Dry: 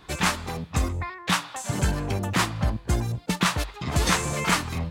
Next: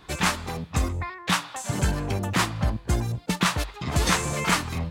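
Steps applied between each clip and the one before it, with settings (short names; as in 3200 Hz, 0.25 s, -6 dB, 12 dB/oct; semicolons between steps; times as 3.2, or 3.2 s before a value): nothing audible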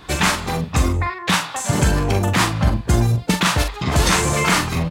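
limiter -15 dBFS, peak gain reduction 6 dB; doubler 43 ms -7 dB; gain +8.5 dB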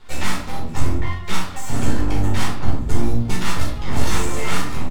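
half-wave rectifier; feedback echo 0.573 s, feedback 51%, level -19.5 dB; shoebox room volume 380 m³, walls furnished, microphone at 4.5 m; gain -10.5 dB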